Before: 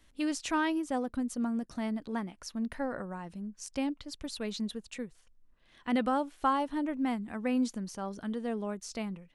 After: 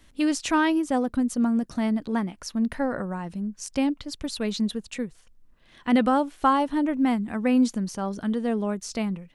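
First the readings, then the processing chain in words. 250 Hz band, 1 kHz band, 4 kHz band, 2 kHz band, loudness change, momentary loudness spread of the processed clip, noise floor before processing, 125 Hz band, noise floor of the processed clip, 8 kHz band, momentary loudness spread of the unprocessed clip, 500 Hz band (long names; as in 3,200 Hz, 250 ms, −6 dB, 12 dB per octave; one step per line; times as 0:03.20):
+9.0 dB, +7.0 dB, +7.0 dB, +7.0 dB, +8.5 dB, 10 LU, −63 dBFS, +9.5 dB, −56 dBFS, +7.0 dB, 11 LU, +7.5 dB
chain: parametric band 160 Hz +3 dB 1.8 octaves
level +7 dB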